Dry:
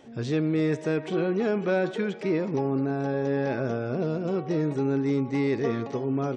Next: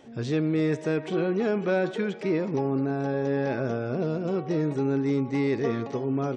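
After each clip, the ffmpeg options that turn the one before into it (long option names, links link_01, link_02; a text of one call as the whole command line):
ffmpeg -i in.wav -af anull out.wav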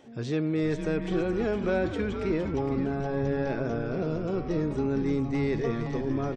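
ffmpeg -i in.wav -filter_complex "[0:a]asplit=7[link_01][link_02][link_03][link_04][link_05][link_06][link_07];[link_02]adelay=461,afreqshift=-130,volume=-7.5dB[link_08];[link_03]adelay=922,afreqshift=-260,volume=-13.9dB[link_09];[link_04]adelay=1383,afreqshift=-390,volume=-20.3dB[link_10];[link_05]adelay=1844,afreqshift=-520,volume=-26.6dB[link_11];[link_06]adelay=2305,afreqshift=-650,volume=-33dB[link_12];[link_07]adelay=2766,afreqshift=-780,volume=-39.4dB[link_13];[link_01][link_08][link_09][link_10][link_11][link_12][link_13]amix=inputs=7:normalize=0,volume=-2.5dB" out.wav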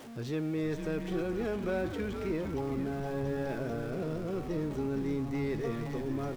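ffmpeg -i in.wav -af "aeval=exprs='val(0)+0.5*0.0126*sgn(val(0))':channel_layout=same,volume=-6.5dB" out.wav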